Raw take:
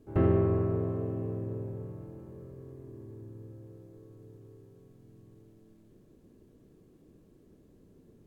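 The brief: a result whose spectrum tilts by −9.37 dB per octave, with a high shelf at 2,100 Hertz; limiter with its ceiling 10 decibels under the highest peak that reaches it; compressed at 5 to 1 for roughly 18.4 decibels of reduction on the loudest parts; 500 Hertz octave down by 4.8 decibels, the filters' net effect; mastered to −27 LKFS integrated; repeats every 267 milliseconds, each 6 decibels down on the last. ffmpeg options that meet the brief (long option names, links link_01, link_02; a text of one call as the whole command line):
ffmpeg -i in.wav -af "equalizer=frequency=500:width_type=o:gain=-7.5,highshelf=frequency=2100:gain=8.5,acompressor=threshold=-43dB:ratio=5,alimiter=level_in=17.5dB:limit=-24dB:level=0:latency=1,volume=-17.5dB,aecho=1:1:267|534|801|1068|1335|1602:0.501|0.251|0.125|0.0626|0.0313|0.0157,volume=25dB" out.wav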